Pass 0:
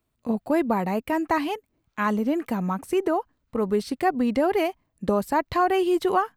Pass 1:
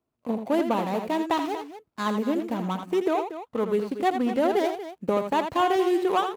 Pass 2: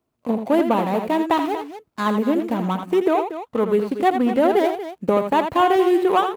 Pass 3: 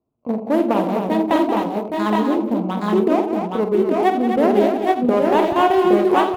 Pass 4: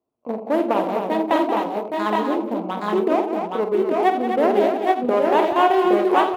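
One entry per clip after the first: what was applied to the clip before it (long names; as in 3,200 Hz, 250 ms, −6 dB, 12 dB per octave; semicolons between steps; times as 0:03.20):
running median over 25 samples; high-pass filter 300 Hz 6 dB per octave; loudspeakers that aren't time-aligned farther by 28 metres −8 dB, 81 metres −12 dB; level +1 dB
dynamic equaliser 5,700 Hz, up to −7 dB, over −51 dBFS, Q 1; level +6 dB
adaptive Wiener filter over 25 samples; on a send: multi-tap delay 47/180/258/818/842 ms −9/−10.5/−6.5/−3.5/−5.5 dB
bass and treble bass −13 dB, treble −4 dB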